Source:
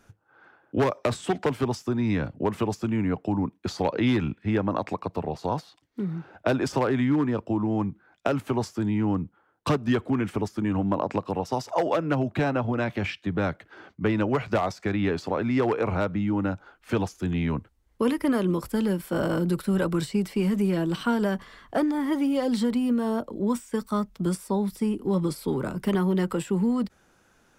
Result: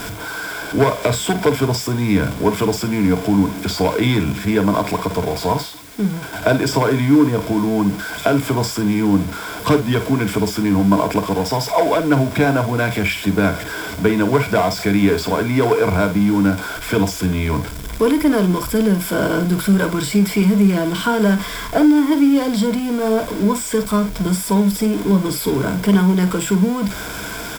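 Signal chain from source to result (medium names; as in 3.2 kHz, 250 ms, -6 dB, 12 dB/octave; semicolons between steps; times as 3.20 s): jump at every zero crossing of -30 dBFS; 5.54–6.33 s: expander -29 dBFS; rippled EQ curve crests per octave 1.7, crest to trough 10 dB; in parallel at -10 dB: word length cut 6-bit, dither triangular; on the sum: doubling 50 ms -10 dB; trim +3 dB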